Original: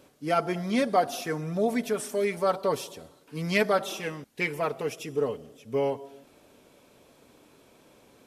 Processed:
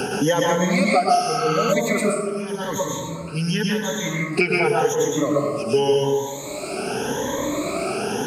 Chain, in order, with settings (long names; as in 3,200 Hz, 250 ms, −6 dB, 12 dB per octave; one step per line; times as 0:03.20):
rippled gain that drifts along the octave scale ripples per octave 1.1, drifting +0.88 Hz, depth 23 dB
0:02.01–0:04.33: guitar amp tone stack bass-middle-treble 6-0-2
convolution reverb RT60 0.85 s, pre-delay 102 ms, DRR −4.5 dB
0:01.21–0:01.70: healed spectral selection 830–4,700 Hz before
parametric band 6,600 Hz +13.5 dB 0.23 octaves
multiband upward and downward compressor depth 100%